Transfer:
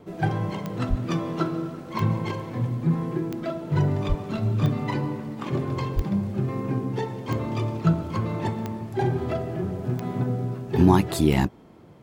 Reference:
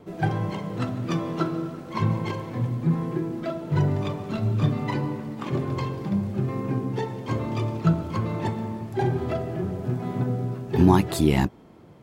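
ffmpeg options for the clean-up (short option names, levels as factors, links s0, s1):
-filter_complex "[0:a]adeclick=t=4,asplit=3[s0][s1][s2];[s0]afade=t=out:st=0.89:d=0.02[s3];[s1]highpass=f=140:w=0.5412,highpass=f=140:w=1.3066,afade=t=in:st=0.89:d=0.02,afade=t=out:st=1.01:d=0.02[s4];[s2]afade=t=in:st=1.01:d=0.02[s5];[s3][s4][s5]amix=inputs=3:normalize=0,asplit=3[s6][s7][s8];[s6]afade=t=out:st=4.08:d=0.02[s9];[s7]highpass=f=140:w=0.5412,highpass=f=140:w=1.3066,afade=t=in:st=4.08:d=0.02,afade=t=out:st=4.2:d=0.02[s10];[s8]afade=t=in:st=4.2:d=0.02[s11];[s9][s10][s11]amix=inputs=3:normalize=0,asplit=3[s12][s13][s14];[s12]afade=t=out:st=5.95:d=0.02[s15];[s13]highpass=f=140:w=0.5412,highpass=f=140:w=1.3066,afade=t=in:st=5.95:d=0.02,afade=t=out:st=6.07:d=0.02[s16];[s14]afade=t=in:st=6.07:d=0.02[s17];[s15][s16][s17]amix=inputs=3:normalize=0"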